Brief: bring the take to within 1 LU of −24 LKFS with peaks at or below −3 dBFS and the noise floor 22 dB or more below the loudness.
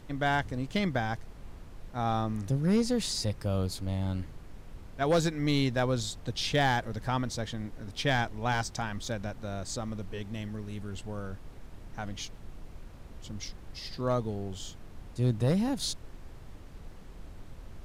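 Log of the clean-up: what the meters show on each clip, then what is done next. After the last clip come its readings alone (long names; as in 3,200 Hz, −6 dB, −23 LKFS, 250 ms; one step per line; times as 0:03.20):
share of clipped samples 0.3%; peaks flattened at −19.0 dBFS; background noise floor −48 dBFS; target noise floor −54 dBFS; integrated loudness −31.5 LKFS; sample peak −19.0 dBFS; target loudness −24.0 LKFS
→ clipped peaks rebuilt −19 dBFS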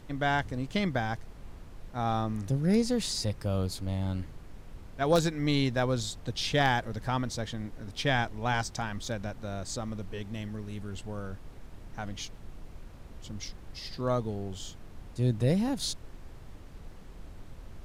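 share of clipped samples 0.0%; background noise floor −48 dBFS; target noise floor −54 dBFS
→ noise reduction from a noise print 6 dB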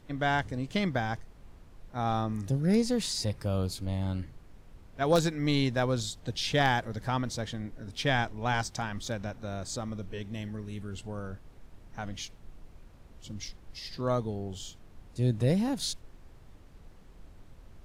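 background noise floor −53 dBFS; target noise floor −54 dBFS
→ noise reduction from a noise print 6 dB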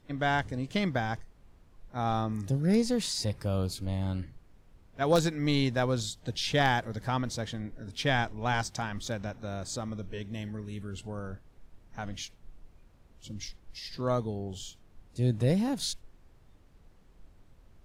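background noise floor −59 dBFS; integrated loudness −31.5 LKFS; sample peak −11.0 dBFS; target loudness −24.0 LKFS
→ level +7.5 dB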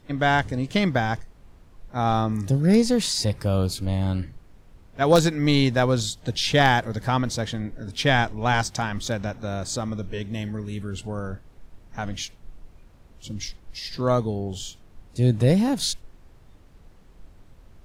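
integrated loudness −24.0 LKFS; sample peak −3.5 dBFS; background noise floor −52 dBFS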